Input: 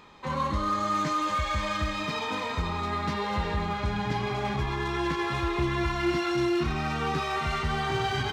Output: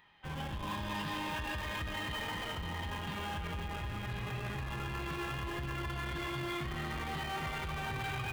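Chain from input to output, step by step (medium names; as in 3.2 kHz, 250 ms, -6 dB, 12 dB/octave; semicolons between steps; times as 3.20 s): graphic EQ 250/500/1000/4000/8000 Hz -9/-12/-6/+4/-9 dB; formant shift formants -4 st; on a send: echo whose repeats swap between lows and highs 267 ms, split 1.1 kHz, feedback 56%, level -5 dB; on the sum: peak limiter -24 dBFS, peak gain reduction 6.5 dB; bass shelf 68 Hz -11.5 dB; band-stop 5.4 kHz; in parallel at -2 dB: Schmitt trigger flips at -34 dBFS; on the sum: trim -7 dB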